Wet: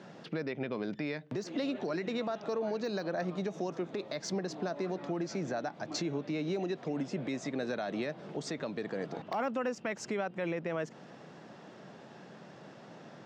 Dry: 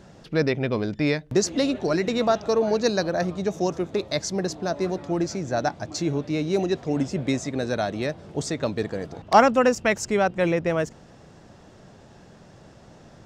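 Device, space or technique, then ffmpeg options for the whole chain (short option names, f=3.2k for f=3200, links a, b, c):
broadcast voice chain: -af "highpass=110,aemphasis=mode=reproduction:type=75fm,deesser=0.85,acompressor=threshold=-28dB:ratio=4,equalizer=f=3.4k:t=o:w=3:g=6,alimiter=limit=-23dB:level=0:latency=1:release=90,highpass=f=140:w=0.5412,highpass=f=140:w=1.3066,volume=-2dB"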